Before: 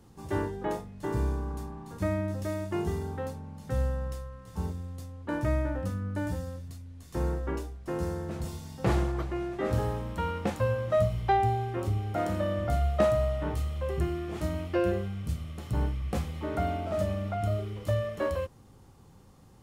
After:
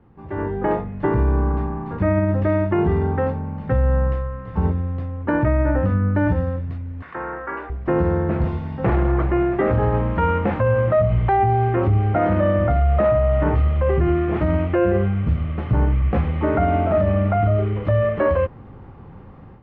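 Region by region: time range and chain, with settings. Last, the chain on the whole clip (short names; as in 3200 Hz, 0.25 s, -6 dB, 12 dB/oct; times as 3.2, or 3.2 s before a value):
7.02–7.7 band-pass 1500 Hz, Q 1.6 + fast leveller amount 50%
whole clip: limiter -24.5 dBFS; LPF 2300 Hz 24 dB/oct; AGC gain up to 12 dB; gain +2.5 dB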